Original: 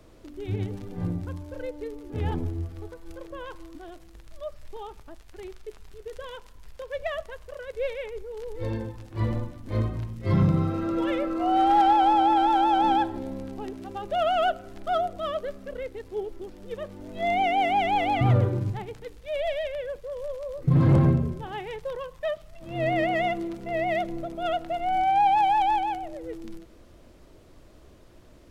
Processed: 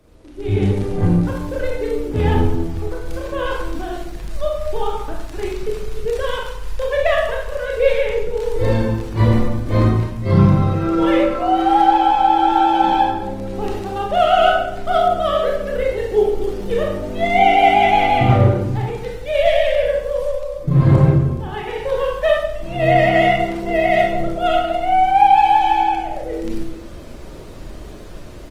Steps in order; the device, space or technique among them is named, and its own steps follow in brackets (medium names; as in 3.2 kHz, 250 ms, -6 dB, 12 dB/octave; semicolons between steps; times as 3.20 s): speakerphone in a meeting room (reverberation RT60 0.80 s, pre-delay 24 ms, DRR -2 dB; speakerphone echo 230 ms, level -29 dB; level rider gain up to 14 dB; trim -1 dB; Opus 24 kbps 48 kHz)